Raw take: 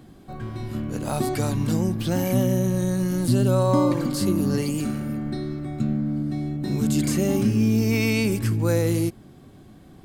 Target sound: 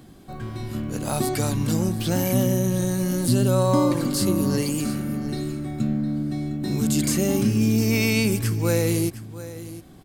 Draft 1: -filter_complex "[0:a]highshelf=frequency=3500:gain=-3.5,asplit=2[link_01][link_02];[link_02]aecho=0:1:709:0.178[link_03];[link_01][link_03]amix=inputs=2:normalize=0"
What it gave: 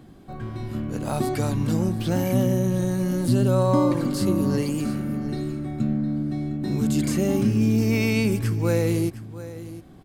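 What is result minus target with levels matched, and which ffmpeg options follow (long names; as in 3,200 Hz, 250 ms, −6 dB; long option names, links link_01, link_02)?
8,000 Hz band −7.5 dB
-filter_complex "[0:a]highshelf=frequency=3500:gain=6,asplit=2[link_01][link_02];[link_02]aecho=0:1:709:0.178[link_03];[link_01][link_03]amix=inputs=2:normalize=0"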